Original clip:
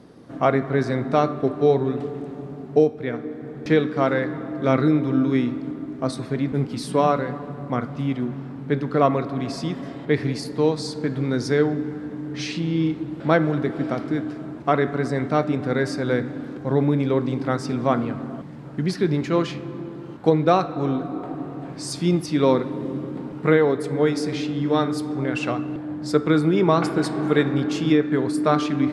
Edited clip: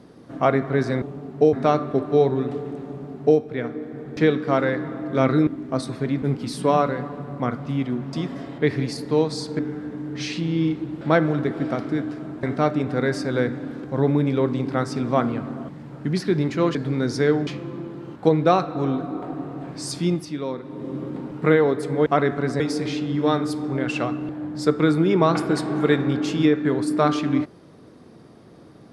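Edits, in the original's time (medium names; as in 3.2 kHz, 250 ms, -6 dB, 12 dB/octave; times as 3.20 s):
2.37–2.88 s: copy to 1.02 s
4.96–5.77 s: delete
8.43–9.60 s: delete
11.06–11.78 s: move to 19.48 s
14.62–15.16 s: move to 24.07 s
21.97–23.07 s: dip -11 dB, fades 0.46 s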